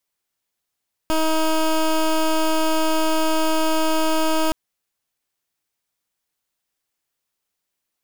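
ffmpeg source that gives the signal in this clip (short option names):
-f lavfi -i "aevalsrc='0.119*(2*lt(mod(317*t,1),0.16)-1)':d=3.42:s=44100"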